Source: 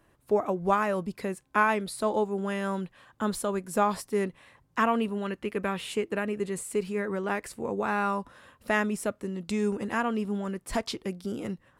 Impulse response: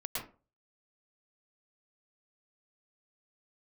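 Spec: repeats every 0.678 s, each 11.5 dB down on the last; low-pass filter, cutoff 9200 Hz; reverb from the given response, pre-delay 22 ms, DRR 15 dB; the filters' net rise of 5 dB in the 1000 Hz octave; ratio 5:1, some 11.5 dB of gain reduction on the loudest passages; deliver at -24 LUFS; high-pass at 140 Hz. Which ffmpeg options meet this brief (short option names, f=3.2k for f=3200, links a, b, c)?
-filter_complex "[0:a]highpass=140,lowpass=9.2k,equalizer=f=1k:t=o:g=6,acompressor=threshold=-28dB:ratio=5,aecho=1:1:678|1356|2034:0.266|0.0718|0.0194,asplit=2[a][b];[1:a]atrim=start_sample=2205,adelay=22[c];[b][c]afir=irnorm=-1:irlink=0,volume=-17.5dB[d];[a][d]amix=inputs=2:normalize=0,volume=9.5dB"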